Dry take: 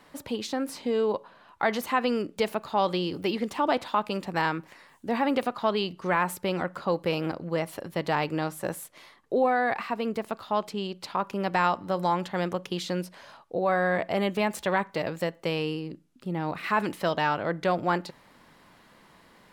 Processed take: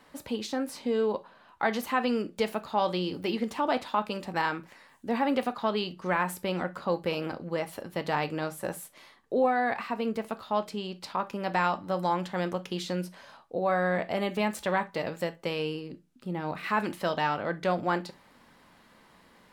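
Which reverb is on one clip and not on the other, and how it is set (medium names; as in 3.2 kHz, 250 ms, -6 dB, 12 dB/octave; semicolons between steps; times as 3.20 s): gated-style reverb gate 90 ms falling, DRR 9.5 dB; trim -2.5 dB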